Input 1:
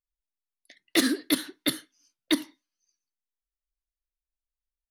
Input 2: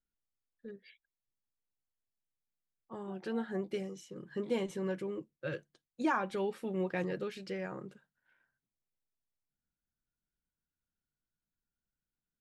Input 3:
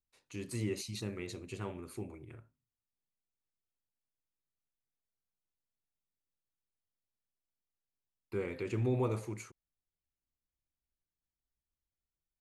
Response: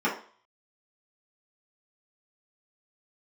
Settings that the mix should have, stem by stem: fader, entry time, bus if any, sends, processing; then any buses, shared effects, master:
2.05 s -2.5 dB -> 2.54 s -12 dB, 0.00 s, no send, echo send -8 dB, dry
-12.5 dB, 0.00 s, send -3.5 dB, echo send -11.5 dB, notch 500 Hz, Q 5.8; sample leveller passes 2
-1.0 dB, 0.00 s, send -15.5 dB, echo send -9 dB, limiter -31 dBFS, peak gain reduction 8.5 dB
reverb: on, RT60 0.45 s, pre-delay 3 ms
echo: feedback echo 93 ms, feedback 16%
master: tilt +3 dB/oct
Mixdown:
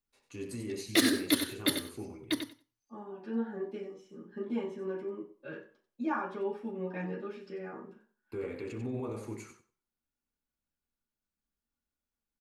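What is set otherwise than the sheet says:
stem 2: missing sample leveller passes 2; master: missing tilt +3 dB/oct

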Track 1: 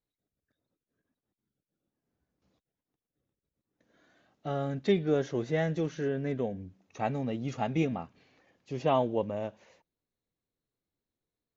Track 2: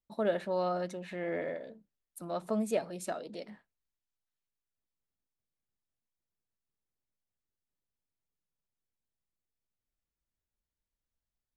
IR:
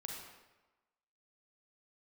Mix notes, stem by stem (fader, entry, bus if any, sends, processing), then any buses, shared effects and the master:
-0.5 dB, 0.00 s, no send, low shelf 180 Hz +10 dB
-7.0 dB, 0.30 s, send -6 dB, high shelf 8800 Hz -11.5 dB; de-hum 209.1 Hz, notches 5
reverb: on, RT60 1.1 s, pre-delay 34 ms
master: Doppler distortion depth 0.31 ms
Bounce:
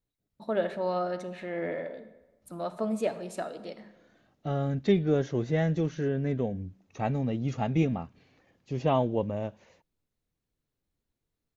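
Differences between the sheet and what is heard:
stem 2 -7.0 dB -> 0.0 dB; master: missing Doppler distortion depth 0.31 ms

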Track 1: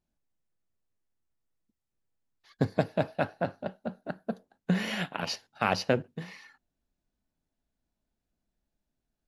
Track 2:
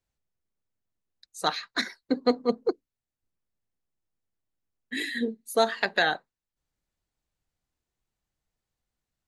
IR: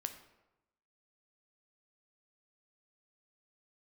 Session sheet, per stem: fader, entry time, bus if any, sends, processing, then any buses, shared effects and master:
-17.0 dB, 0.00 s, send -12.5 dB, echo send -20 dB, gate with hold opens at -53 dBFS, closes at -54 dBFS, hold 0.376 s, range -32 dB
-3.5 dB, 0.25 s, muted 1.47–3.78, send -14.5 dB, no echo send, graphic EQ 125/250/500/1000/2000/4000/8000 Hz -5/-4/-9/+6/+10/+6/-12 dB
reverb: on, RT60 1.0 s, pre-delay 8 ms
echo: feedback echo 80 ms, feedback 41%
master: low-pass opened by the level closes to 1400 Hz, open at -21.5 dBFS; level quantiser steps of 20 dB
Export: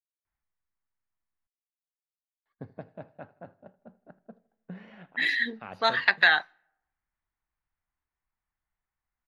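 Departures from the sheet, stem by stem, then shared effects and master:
stem 2: send -14.5 dB -> -23 dB; master: missing level quantiser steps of 20 dB

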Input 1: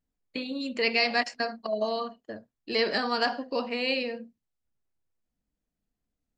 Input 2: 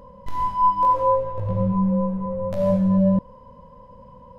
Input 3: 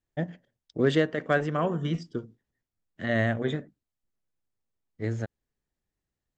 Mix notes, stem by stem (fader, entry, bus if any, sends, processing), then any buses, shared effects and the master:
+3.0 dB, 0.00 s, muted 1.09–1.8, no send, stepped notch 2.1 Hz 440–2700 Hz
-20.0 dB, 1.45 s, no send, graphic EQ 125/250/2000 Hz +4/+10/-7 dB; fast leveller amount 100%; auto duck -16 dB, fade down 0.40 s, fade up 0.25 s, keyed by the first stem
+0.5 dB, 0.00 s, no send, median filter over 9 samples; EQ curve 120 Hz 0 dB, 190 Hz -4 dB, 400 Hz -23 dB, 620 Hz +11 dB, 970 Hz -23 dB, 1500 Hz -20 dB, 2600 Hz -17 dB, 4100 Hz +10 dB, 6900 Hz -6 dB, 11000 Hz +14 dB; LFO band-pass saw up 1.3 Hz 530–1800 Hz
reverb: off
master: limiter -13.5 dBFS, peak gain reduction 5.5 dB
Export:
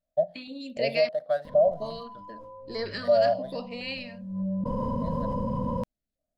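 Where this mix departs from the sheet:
stem 1 +3.0 dB -> -5.5 dB; stem 3 +0.5 dB -> +8.0 dB

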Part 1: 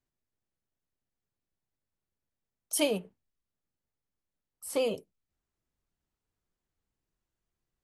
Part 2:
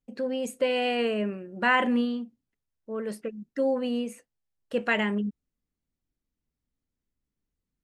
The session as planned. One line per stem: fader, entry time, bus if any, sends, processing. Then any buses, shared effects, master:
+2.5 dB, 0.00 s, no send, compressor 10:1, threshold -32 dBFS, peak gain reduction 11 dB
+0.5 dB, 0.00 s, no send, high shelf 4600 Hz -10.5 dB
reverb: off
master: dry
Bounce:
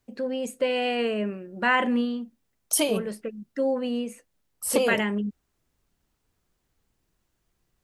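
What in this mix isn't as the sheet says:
stem 1 +2.5 dB -> +12.0 dB; stem 2: missing high shelf 4600 Hz -10.5 dB

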